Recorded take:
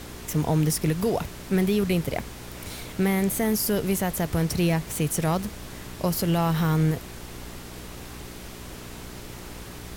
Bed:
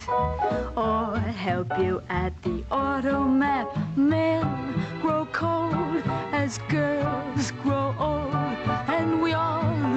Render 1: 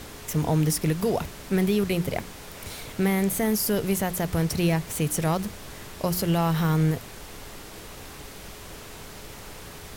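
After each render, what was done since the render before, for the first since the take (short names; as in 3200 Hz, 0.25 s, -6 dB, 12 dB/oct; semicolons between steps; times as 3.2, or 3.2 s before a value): de-hum 60 Hz, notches 6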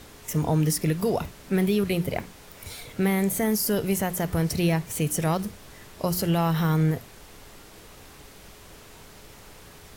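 noise print and reduce 6 dB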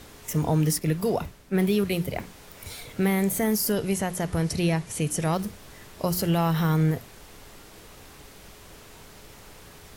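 0.79–2.19 three-band expander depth 70%; 3.72–5.33 elliptic low-pass 11000 Hz, stop band 50 dB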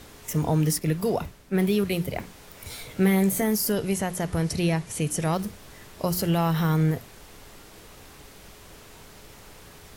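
2.68–3.42 doubler 16 ms -6 dB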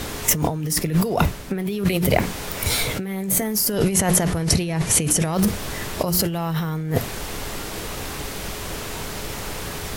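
negative-ratio compressor -32 dBFS, ratio -1; maximiser +10.5 dB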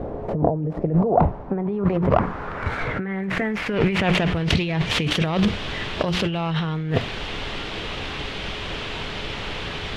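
self-modulated delay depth 0.33 ms; low-pass sweep 620 Hz -> 3200 Hz, 0.68–4.52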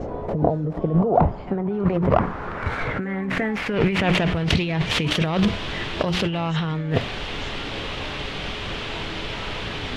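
add bed -16.5 dB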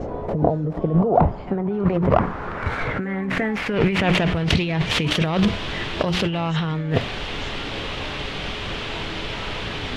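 gain +1 dB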